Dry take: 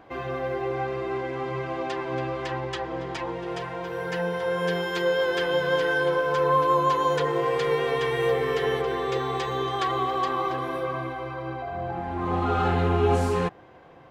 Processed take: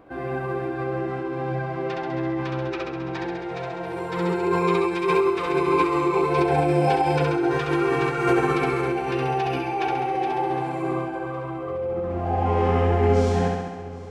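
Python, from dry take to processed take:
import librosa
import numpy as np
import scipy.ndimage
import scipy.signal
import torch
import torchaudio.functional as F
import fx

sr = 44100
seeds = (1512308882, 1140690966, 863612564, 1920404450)

y = fx.room_flutter(x, sr, wall_m=11.5, rt60_s=1.3)
y = fx.formant_shift(y, sr, semitones=-5)
y = fx.echo_feedback(y, sr, ms=764, feedback_pct=57, wet_db=-20.0)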